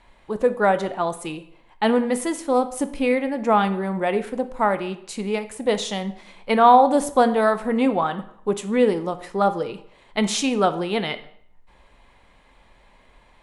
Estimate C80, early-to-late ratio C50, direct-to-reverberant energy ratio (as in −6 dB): 17.0 dB, 14.0 dB, 10.5 dB